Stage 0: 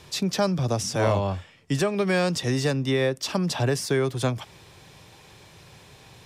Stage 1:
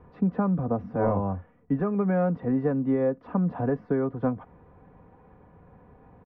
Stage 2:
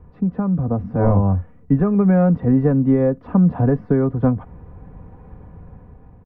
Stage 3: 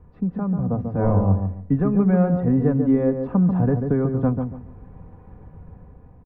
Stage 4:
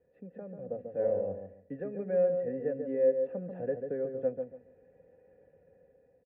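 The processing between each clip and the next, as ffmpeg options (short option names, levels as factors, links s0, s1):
-af "lowpass=f=1400:w=0.5412,lowpass=f=1400:w=1.3066,lowshelf=f=490:g=6.5,aecho=1:1:4.1:0.6,volume=0.531"
-af "lowshelf=f=200:g=11,dynaudnorm=f=220:g=7:m=2.51,lowshelf=f=73:g=6.5,volume=0.75"
-filter_complex "[0:a]asplit=2[s0][s1];[s1]adelay=141,lowpass=f=980:p=1,volume=0.562,asplit=2[s2][s3];[s3]adelay=141,lowpass=f=980:p=1,volume=0.28,asplit=2[s4][s5];[s5]adelay=141,lowpass=f=980:p=1,volume=0.28,asplit=2[s6][s7];[s7]adelay=141,lowpass=f=980:p=1,volume=0.28[s8];[s0][s2][s4][s6][s8]amix=inputs=5:normalize=0,volume=0.631"
-filter_complex "[0:a]asplit=3[s0][s1][s2];[s0]bandpass=f=530:t=q:w=8,volume=1[s3];[s1]bandpass=f=1840:t=q:w=8,volume=0.501[s4];[s2]bandpass=f=2480:t=q:w=8,volume=0.355[s5];[s3][s4][s5]amix=inputs=3:normalize=0"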